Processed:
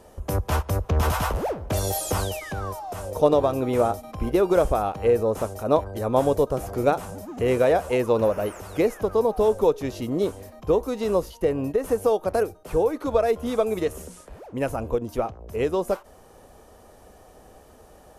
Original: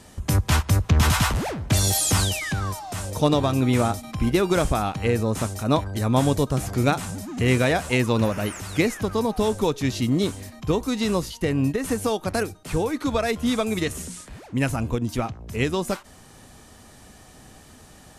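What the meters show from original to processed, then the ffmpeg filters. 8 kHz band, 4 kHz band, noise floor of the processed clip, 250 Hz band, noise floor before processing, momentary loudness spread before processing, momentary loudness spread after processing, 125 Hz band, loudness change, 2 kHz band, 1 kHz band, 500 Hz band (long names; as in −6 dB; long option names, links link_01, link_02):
−9.0 dB, −10.0 dB, −51 dBFS, −4.5 dB, −49 dBFS, 8 LU, 9 LU, −7.0 dB, −0.5 dB, −7.0 dB, +0.5 dB, +4.5 dB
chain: -af "equalizer=frequency=125:width_type=o:width=1:gain=-9,equalizer=frequency=250:width_type=o:width=1:gain=-6,equalizer=frequency=500:width_type=o:width=1:gain=8,equalizer=frequency=2000:width_type=o:width=1:gain=-7,equalizer=frequency=4000:width_type=o:width=1:gain=-8,equalizer=frequency=8000:width_type=o:width=1:gain=-9"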